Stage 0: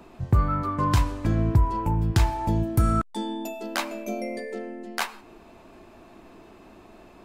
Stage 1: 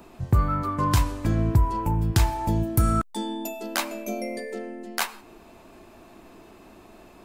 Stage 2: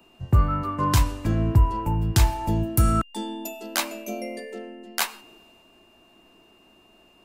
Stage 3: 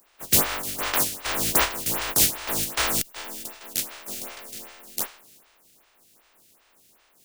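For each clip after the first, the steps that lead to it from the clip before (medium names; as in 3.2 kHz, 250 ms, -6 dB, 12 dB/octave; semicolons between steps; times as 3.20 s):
treble shelf 7.2 kHz +9.5 dB
whistle 2.8 kHz -50 dBFS; three bands expanded up and down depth 40%
spectral contrast reduction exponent 0.13; lamp-driven phase shifter 2.6 Hz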